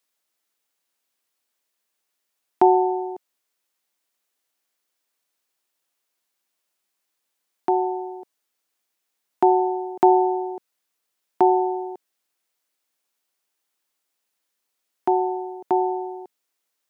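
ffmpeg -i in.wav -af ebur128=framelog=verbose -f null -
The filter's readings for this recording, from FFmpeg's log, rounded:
Integrated loudness:
  I:         -21.7 LUFS
  Threshold: -32.7 LUFS
Loudness range:
  LRA:         9.6 LU
  Threshold: -46.3 LUFS
  LRA low:   -31.9 LUFS
  LRA high:  -22.3 LUFS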